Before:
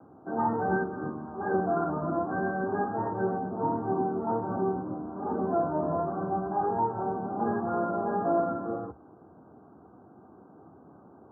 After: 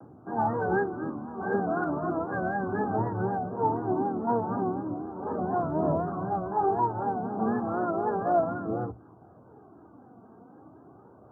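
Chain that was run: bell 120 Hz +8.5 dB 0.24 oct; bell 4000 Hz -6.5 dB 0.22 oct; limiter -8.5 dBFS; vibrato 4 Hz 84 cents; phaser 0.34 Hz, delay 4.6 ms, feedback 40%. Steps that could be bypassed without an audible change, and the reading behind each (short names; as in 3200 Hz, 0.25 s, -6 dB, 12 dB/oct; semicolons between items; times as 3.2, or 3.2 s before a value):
bell 4000 Hz: input band ends at 1700 Hz; limiter -8.5 dBFS: input peak -15.5 dBFS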